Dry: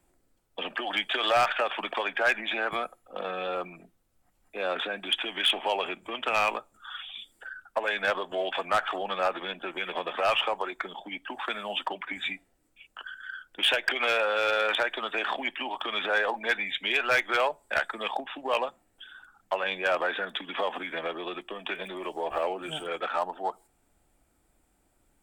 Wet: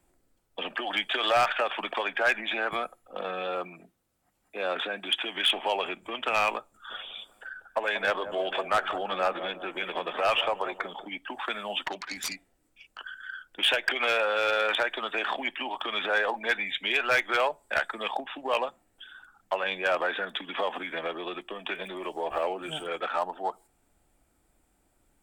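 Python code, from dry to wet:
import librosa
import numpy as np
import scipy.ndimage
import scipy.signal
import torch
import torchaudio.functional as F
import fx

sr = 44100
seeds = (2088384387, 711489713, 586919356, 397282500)

y = fx.highpass(x, sr, hz=100.0, slope=6, at=(3.42, 5.36))
y = fx.echo_wet_lowpass(y, sr, ms=186, feedback_pct=43, hz=800.0, wet_db=-8.5, at=(6.89, 11.04), fade=0.02)
y = fx.self_delay(y, sr, depth_ms=0.29, at=(11.83, 12.99))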